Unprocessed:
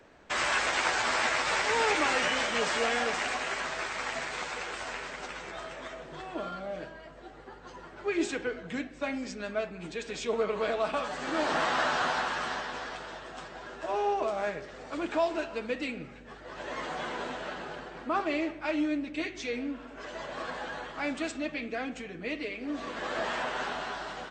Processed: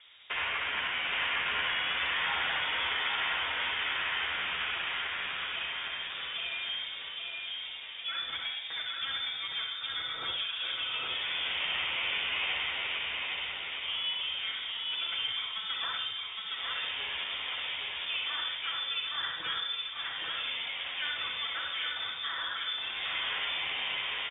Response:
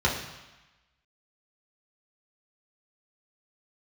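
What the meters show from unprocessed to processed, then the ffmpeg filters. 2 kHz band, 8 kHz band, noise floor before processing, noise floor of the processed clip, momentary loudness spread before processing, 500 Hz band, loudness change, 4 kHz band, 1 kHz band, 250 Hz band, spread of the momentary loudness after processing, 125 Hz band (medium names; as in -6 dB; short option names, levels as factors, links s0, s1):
+0.5 dB, under -40 dB, -48 dBFS, -40 dBFS, 14 LU, -17.5 dB, 0.0 dB, +8.5 dB, -7.0 dB, -22.0 dB, 5 LU, no reading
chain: -filter_complex "[0:a]lowpass=f=3200:t=q:w=0.5098,lowpass=f=3200:t=q:w=0.6013,lowpass=f=3200:t=q:w=0.9,lowpass=f=3200:t=q:w=2.563,afreqshift=-3800,acompressor=threshold=0.0282:ratio=4,asplit=2[s0][s1];[1:a]atrim=start_sample=2205,afade=t=out:st=0.18:d=0.01,atrim=end_sample=8379,adelay=59[s2];[s1][s2]afir=irnorm=-1:irlink=0,volume=0.178[s3];[s0][s3]amix=inputs=2:normalize=0,acrossover=split=2900[s4][s5];[s5]acompressor=threshold=0.01:ratio=4:attack=1:release=60[s6];[s4][s6]amix=inputs=2:normalize=0,aecho=1:1:814|1628|2442|3256|4070:0.708|0.269|0.102|0.0388|0.0148"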